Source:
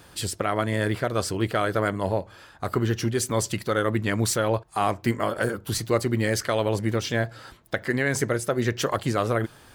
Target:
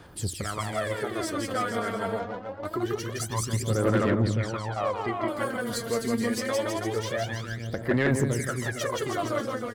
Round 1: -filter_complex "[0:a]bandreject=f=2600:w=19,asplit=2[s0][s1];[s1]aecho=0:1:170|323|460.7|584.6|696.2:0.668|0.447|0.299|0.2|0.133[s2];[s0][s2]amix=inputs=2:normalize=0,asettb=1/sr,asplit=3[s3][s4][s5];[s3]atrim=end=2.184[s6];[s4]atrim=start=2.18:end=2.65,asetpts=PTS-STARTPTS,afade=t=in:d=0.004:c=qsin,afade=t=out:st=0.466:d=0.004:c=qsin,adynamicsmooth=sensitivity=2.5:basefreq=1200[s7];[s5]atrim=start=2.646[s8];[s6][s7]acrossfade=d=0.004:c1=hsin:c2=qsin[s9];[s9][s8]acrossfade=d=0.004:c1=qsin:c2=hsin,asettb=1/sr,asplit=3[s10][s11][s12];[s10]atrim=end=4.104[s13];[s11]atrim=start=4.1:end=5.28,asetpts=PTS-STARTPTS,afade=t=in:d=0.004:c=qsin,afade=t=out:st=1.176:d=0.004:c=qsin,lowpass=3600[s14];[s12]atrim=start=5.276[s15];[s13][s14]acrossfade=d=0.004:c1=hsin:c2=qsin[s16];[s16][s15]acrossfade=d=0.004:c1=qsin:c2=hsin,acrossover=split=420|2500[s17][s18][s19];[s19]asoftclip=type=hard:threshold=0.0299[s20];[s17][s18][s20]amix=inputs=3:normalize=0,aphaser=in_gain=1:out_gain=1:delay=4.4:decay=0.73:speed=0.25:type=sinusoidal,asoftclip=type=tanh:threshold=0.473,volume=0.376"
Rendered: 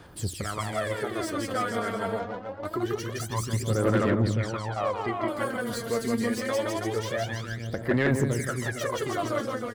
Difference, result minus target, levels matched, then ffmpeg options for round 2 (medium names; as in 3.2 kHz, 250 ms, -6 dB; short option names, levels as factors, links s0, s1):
hard clipper: distortion +18 dB
-filter_complex "[0:a]bandreject=f=2600:w=19,asplit=2[s0][s1];[s1]aecho=0:1:170|323|460.7|584.6|696.2:0.668|0.447|0.299|0.2|0.133[s2];[s0][s2]amix=inputs=2:normalize=0,asettb=1/sr,asplit=3[s3][s4][s5];[s3]atrim=end=2.184[s6];[s4]atrim=start=2.18:end=2.65,asetpts=PTS-STARTPTS,afade=t=in:d=0.004:c=qsin,afade=t=out:st=0.466:d=0.004:c=qsin,adynamicsmooth=sensitivity=2.5:basefreq=1200[s7];[s5]atrim=start=2.646[s8];[s6][s7]acrossfade=d=0.004:c1=hsin:c2=qsin[s9];[s9][s8]acrossfade=d=0.004:c1=qsin:c2=hsin,asettb=1/sr,asplit=3[s10][s11][s12];[s10]atrim=end=4.104[s13];[s11]atrim=start=4.1:end=5.28,asetpts=PTS-STARTPTS,afade=t=in:d=0.004:c=qsin,afade=t=out:st=1.176:d=0.004:c=qsin,lowpass=3600[s14];[s12]atrim=start=5.276[s15];[s13][s14]acrossfade=d=0.004:c1=hsin:c2=qsin[s16];[s16][s15]acrossfade=d=0.004:c1=qsin:c2=hsin,acrossover=split=420|2500[s17][s18][s19];[s19]asoftclip=type=hard:threshold=0.0944[s20];[s17][s18][s20]amix=inputs=3:normalize=0,aphaser=in_gain=1:out_gain=1:delay=4.4:decay=0.73:speed=0.25:type=sinusoidal,asoftclip=type=tanh:threshold=0.473,volume=0.376"